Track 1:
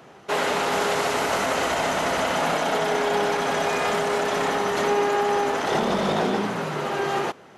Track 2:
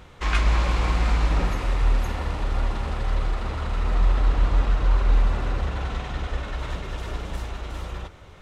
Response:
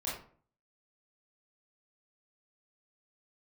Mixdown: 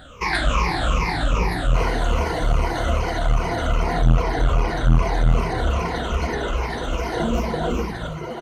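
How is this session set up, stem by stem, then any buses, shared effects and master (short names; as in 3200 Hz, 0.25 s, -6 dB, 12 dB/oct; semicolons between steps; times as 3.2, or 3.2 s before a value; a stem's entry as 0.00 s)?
-3.5 dB, 1.45 s, no send, tilt shelf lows +6 dB, about 780 Hz; reverb removal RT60 1.8 s; ripple EQ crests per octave 1.9, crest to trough 15 dB
-1.0 dB, 0.00 s, send -8.5 dB, moving spectral ripple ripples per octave 0.81, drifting -2.5 Hz, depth 22 dB; low shelf 69 Hz -6.5 dB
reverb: on, RT60 0.50 s, pre-delay 21 ms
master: core saturation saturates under 140 Hz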